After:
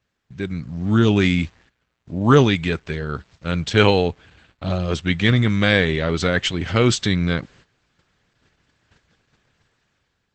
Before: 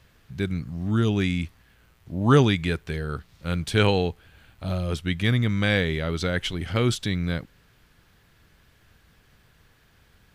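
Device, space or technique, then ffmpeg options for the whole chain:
video call: -af "highpass=frequency=100:poles=1,dynaudnorm=framelen=220:gausssize=7:maxgain=10.5dB,agate=range=-14dB:threshold=-47dB:ratio=16:detection=peak" -ar 48000 -c:a libopus -b:a 12k

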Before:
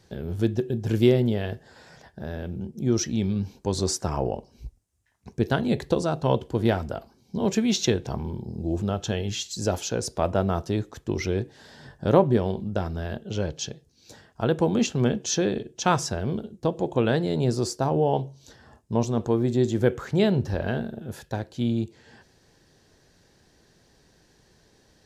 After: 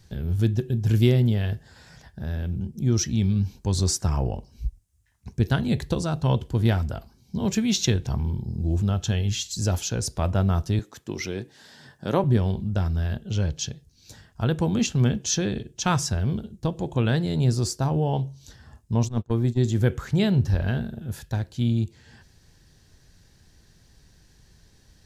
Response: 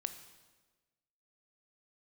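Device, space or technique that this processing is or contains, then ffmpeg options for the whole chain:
smiley-face EQ: -filter_complex "[0:a]asettb=1/sr,asplit=3[link_01][link_02][link_03];[link_01]atrim=end=10.794[link_04];[link_02]atrim=start=10.79:end=12.24,asetpts=PTS-STARTPTS,afade=type=in:duration=0.004:curve=qsin,afade=type=out:start_time=1.446:duration=0.004:curve=qsin,highpass=230[link_05];[link_03]atrim=start=12.236[link_06];[link_04][link_05]acrossfade=duration=0.004:curve1=hsin:curve2=qsin[link_07];[link_07][link_06]acrossfade=duration=0.004:curve1=qsin:curve2=hsin,asplit=3[link_08][link_09][link_10];[link_08]afade=type=out:start_time=19.07:duration=0.02[link_11];[link_09]agate=range=-28dB:threshold=-23dB:ratio=16:detection=peak,afade=type=in:start_time=19.07:duration=0.02,afade=type=out:start_time=19.64:duration=0.02[link_12];[link_10]afade=type=in:start_time=19.64:duration=0.02[link_13];[link_11][link_12][link_13]amix=inputs=3:normalize=0,lowshelf=frequency=83:gain=5.5,lowshelf=frequency=180:gain=6.5,equalizer=frequency=470:width_type=o:width=2.2:gain=-8,highshelf=frequency=9400:gain=5.5,volume=1dB"

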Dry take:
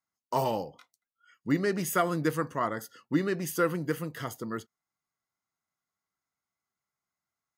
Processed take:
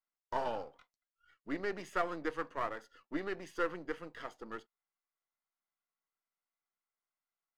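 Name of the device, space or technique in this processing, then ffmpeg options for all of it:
crystal radio: -af "highpass=350,lowpass=3400,aeval=exprs='if(lt(val(0),0),0.447*val(0),val(0))':channel_layout=same,volume=-4dB"

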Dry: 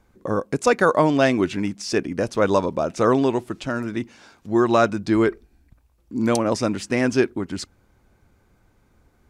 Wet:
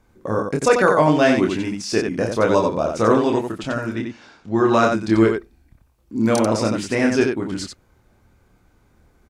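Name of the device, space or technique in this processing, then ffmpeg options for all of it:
slapback doubling: -filter_complex "[0:a]asettb=1/sr,asplit=3[link_01][link_02][link_03];[link_01]atrim=end=3.954[link_04];[link_02]atrim=start=3.95:end=4.72,asetpts=PTS-STARTPTS,afade=type=in:duration=0.004:curve=qsin,afade=type=out:start_time=0.766:duration=0.004:curve=qsin,lowpass=5800[link_05];[link_03]atrim=start=4.716[link_06];[link_04][link_05]acrossfade=duration=0.004:curve1=hsin:curve2=qsin[link_07];[link_07][link_06]acrossfade=duration=0.004:curve1=qsin:curve2=hsin,asplit=3[link_08][link_09][link_10];[link_09]adelay=27,volume=-3.5dB[link_11];[link_10]adelay=91,volume=-5dB[link_12];[link_08][link_11][link_12]amix=inputs=3:normalize=0"

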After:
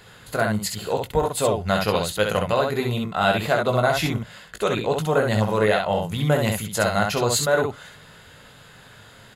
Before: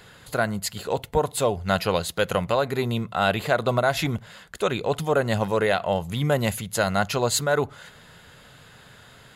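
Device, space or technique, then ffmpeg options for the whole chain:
slapback doubling: -filter_complex "[0:a]asplit=3[link_01][link_02][link_03];[link_02]adelay=19,volume=-7dB[link_04];[link_03]adelay=66,volume=-4dB[link_05];[link_01][link_04][link_05]amix=inputs=3:normalize=0"

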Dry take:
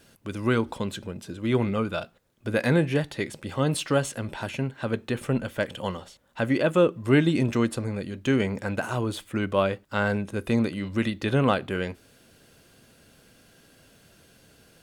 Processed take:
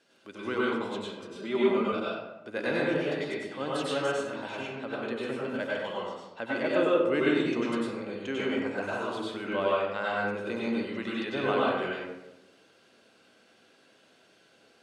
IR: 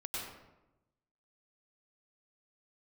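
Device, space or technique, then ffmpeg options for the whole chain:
supermarket ceiling speaker: -filter_complex "[0:a]highpass=310,lowpass=5900[link_01];[1:a]atrim=start_sample=2205[link_02];[link_01][link_02]afir=irnorm=-1:irlink=0,asettb=1/sr,asplit=3[link_03][link_04][link_05];[link_03]atrim=end=1.354[link_06];[link_04]atrim=start=1.35:end=1.92,asetpts=PTS-STARTPTS,afade=type=in:duration=0.004:curve=qsin,afade=type=out:start_time=0.566:duration=0.004:curve=qsin,aecho=1:1:5:0.92,atrim=end_sample=25137[link_07];[link_05]atrim=start=1.916[link_08];[link_06][link_07]acrossfade=duration=0.004:curve1=hsin:curve2=qsin[link_09];[link_09][link_08]acrossfade=duration=0.004:curve1=qsin:curve2=hsin,volume=-3dB"

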